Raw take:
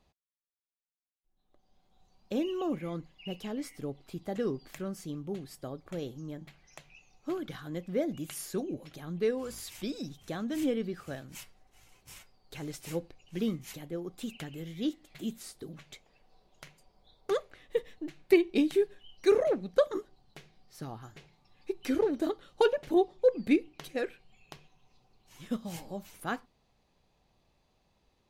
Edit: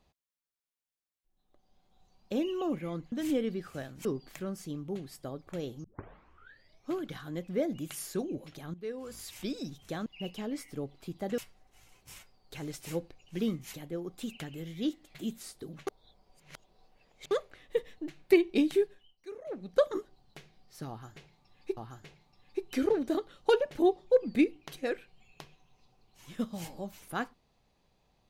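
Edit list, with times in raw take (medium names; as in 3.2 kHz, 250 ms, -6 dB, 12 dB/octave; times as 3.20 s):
3.12–4.44 s: swap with 10.45–11.38 s
6.23 s: tape start 1.07 s
9.13–9.79 s: fade in, from -16 dB
15.87–17.31 s: reverse
18.78–19.81 s: dip -20.5 dB, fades 0.38 s
20.89–21.77 s: loop, 2 plays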